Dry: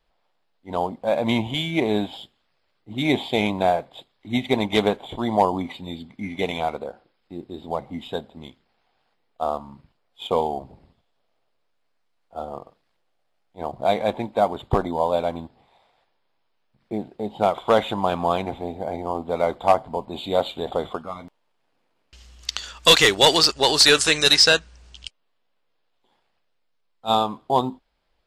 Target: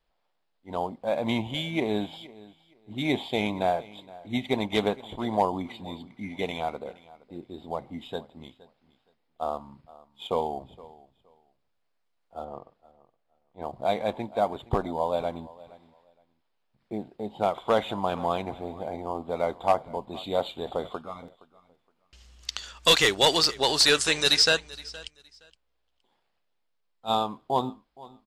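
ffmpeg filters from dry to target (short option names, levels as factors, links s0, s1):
-filter_complex "[0:a]asettb=1/sr,asplit=3[s0][s1][s2];[s0]atrim=end=12.444[s3];[s1]atrim=start=12.44:end=13.62,asetpts=PTS-STARTPTS,afade=t=in:d=0.004:c=qsin,afade=t=out:st=1.176:d=0.004:c=qsin,lowpass=f=2900:p=1[s4];[s2]atrim=start=13.616[s5];[s3][s4]acrossfade=d=0.004:c1=hsin:c2=qsin[s6];[s6][s5]acrossfade=d=0.004:c1=qsin:c2=hsin,aecho=1:1:468|936:0.0944|0.0189,volume=0.531"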